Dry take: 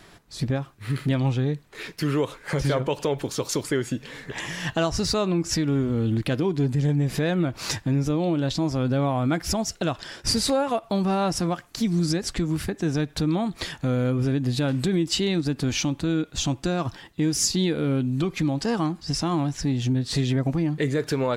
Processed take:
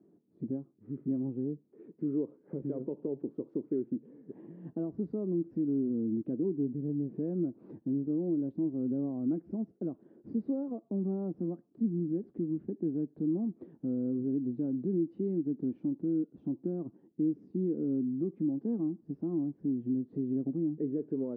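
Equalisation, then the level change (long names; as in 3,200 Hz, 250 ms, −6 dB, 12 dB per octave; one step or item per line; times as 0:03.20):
flat-topped band-pass 280 Hz, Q 1.4
high-frequency loss of the air 180 metres
−4.5 dB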